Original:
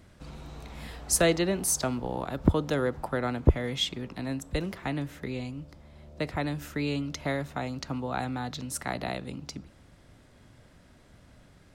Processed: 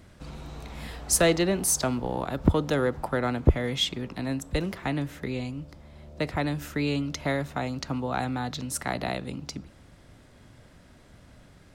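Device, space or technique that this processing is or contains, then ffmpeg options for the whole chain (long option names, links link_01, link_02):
parallel distortion: -filter_complex "[0:a]asplit=2[link_01][link_02];[link_02]asoftclip=type=hard:threshold=-23dB,volume=-8dB[link_03];[link_01][link_03]amix=inputs=2:normalize=0"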